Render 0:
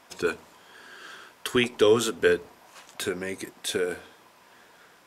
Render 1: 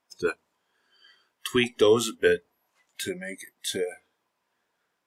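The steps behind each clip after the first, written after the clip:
noise reduction from a noise print of the clip's start 22 dB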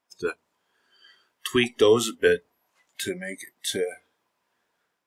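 automatic gain control gain up to 4 dB
level −2 dB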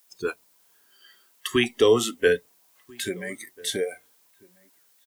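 background noise blue −62 dBFS
slap from a distant wall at 230 metres, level −25 dB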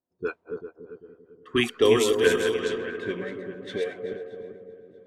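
feedback delay that plays each chunk backwards 197 ms, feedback 65%, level −6 dB
echo with a time of its own for lows and highs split 1,200 Hz, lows 288 ms, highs 633 ms, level −8.5 dB
low-pass that shuts in the quiet parts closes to 350 Hz, open at −17.5 dBFS
level −1.5 dB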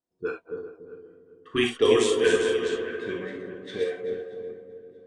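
on a send at −1.5 dB: convolution reverb, pre-delay 3 ms
on the sum: downsampling to 22,050 Hz
level −3 dB

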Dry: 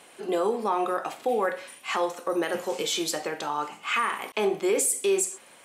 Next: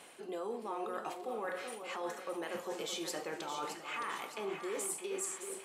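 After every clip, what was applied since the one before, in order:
reversed playback
downward compressor 5 to 1, threshold −35 dBFS, peak gain reduction 13.5 dB
reversed playback
echo with a time of its own for lows and highs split 1,100 Hz, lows 380 ms, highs 616 ms, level −7.5 dB
level −3 dB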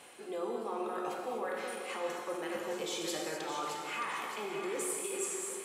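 reverb whose tail is shaped and stops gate 280 ms flat, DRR 0.5 dB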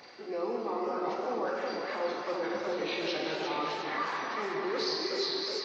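hearing-aid frequency compression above 1,200 Hz 1.5 to 1
feedback echo with a swinging delay time 361 ms, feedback 47%, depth 201 cents, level −6.5 dB
level +3.5 dB

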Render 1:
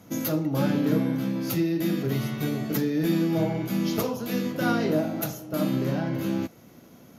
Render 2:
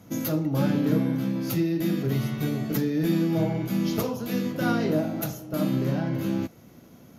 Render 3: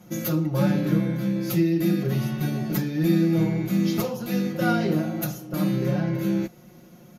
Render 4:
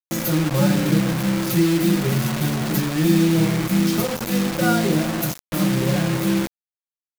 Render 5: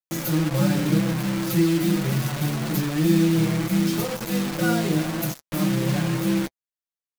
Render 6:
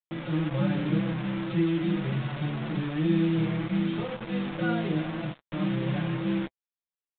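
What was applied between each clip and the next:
low-shelf EQ 150 Hz +6.5 dB; level −1.5 dB
comb filter 5.6 ms, depth 100%; level −1.5 dB
bit reduction 5 bits; level +3.5 dB
flanger 1.9 Hz, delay 5.9 ms, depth 1.1 ms, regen −29%
downsampling to 8,000 Hz; level −5.5 dB

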